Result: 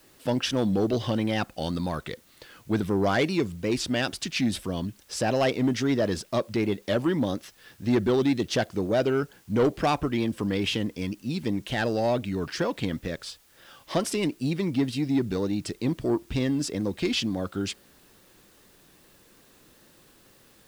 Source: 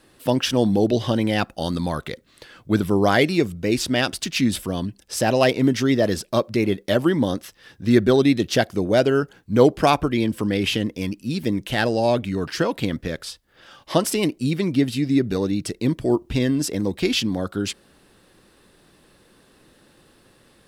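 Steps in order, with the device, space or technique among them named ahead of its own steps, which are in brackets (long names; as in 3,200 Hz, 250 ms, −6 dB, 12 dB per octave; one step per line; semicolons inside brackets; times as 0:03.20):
compact cassette (soft clipping −12 dBFS, distortion −16 dB; low-pass filter 8,800 Hz; tape wow and flutter; white noise bed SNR 33 dB)
level −4 dB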